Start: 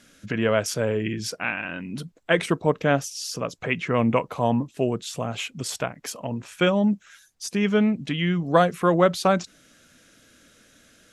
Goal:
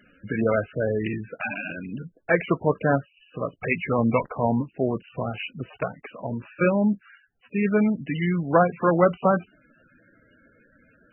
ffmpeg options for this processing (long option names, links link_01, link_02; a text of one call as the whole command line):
ffmpeg -i in.wav -filter_complex "[0:a]asplit=3[link_01][link_02][link_03];[link_01]afade=type=out:start_time=4.12:duration=0.02[link_04];[link_02]acrusher=bits=7:dc=4:mix=0:aa=0.000001,afade=type=in:start_time=4.12:duration=0.02,afade=type=out:start_time=4.56:duration=0.02[link_05];[link_03]afade=type=in:start_time=4.56:duration=0.02[link_06];[link_04][link_05][link_06]amix=inputs=3:normalize=0" -ar 24000 -c:a libmp3lame -b:a 8k out.mp3